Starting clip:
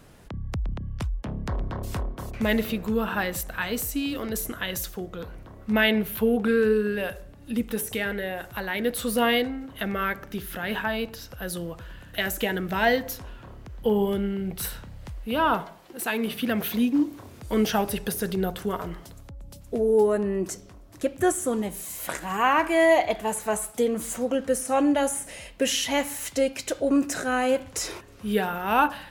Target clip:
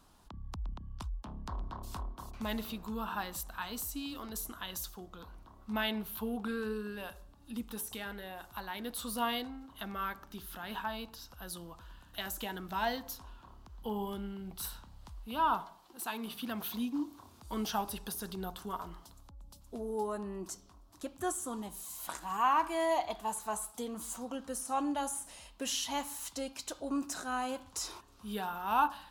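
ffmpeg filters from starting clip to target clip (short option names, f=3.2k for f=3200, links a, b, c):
-af "equalizer=f=125:t=o:w=1:g=-10,equalizer=f=500:t=o:w=1:g=-11,equalizer=f=1k:t=o:w=1:g=9,equalizer=f=2k:t=o:w=1:g=-11,equalizer=f=4k:t=o:w=1:g=4,volume=-8.5dB"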